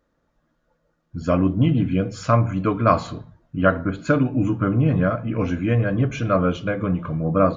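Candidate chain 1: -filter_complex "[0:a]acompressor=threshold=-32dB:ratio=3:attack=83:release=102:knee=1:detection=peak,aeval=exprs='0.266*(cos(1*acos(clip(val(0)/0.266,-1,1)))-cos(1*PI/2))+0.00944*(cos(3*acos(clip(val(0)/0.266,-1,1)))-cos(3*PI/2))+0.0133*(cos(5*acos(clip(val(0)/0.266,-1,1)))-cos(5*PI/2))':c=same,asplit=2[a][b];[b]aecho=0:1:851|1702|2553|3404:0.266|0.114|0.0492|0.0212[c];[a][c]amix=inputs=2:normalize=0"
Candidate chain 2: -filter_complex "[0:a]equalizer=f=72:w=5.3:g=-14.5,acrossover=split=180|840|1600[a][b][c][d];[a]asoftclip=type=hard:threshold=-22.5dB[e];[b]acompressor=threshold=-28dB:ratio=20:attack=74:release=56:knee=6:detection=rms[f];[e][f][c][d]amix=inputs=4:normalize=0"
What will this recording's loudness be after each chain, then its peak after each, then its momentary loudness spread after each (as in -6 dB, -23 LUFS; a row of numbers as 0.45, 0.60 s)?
-28.0, -24.0 LUFS; -11.0, -5.0 dBFS; 3, 4 LU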